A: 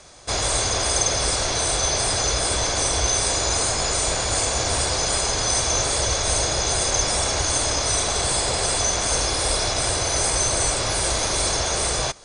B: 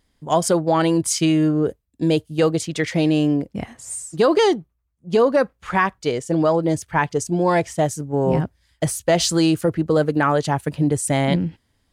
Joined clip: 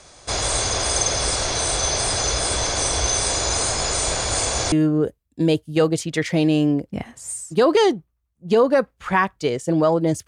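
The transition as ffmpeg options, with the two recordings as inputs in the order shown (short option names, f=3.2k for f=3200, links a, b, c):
-filter_complex "[0:a]apad=whole_dur=10.27,atrim=end=10.27,atrim=end=4.722[a];[1:a]atrim=start=1.338:end=6.89[b];[a][b]acrossfade=d=0.004:c1=hsin:c2=hsin"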